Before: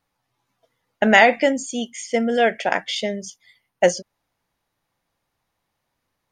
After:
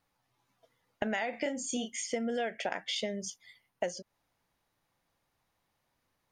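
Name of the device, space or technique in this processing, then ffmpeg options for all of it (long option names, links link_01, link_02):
serial compression, leveller first: -filter_complex "[0:a]acompressor=threshold=-18dB:ratio=2,acompressor=threshold=-29dB:ratio=5,asettb=1/sr,asplit=3[link_01][link_02][link_03];[link_01]atrim=end=1.304[link_04];[link_02]atrim=start=1.3:end=2,asetpts=PTS-STARTPTS,afade=type=in:duration=0.004:curve=qsin,afade=type=out:start_time=0.696:duration=0.004:curve=qsin,asplit=2[link_05][link_06];[link_06]adelay=32,volume=-6dB[link_07];[link_05][link_07]amix=inputs=2:normalize=0,atrim=end_sample=30870[link_08];[link_03]atrim=start=1.996[link_09];[link_04][link_08]acrossfade=duration=0.004:curve1=hsin:curve2=qsin[link_10];[link_10][link_09]acrossfade=duration=0.004:curve1=qsin:curve2=hsin,volume=-2.5dB"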